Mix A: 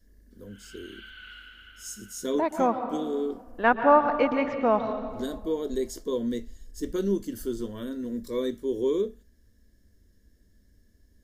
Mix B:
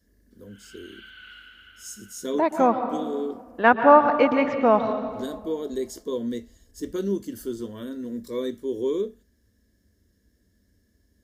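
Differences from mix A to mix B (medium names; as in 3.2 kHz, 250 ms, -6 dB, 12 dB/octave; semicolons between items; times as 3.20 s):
second voice +4.5 dB; master: add high-pass 68 Hz 12 dB/octave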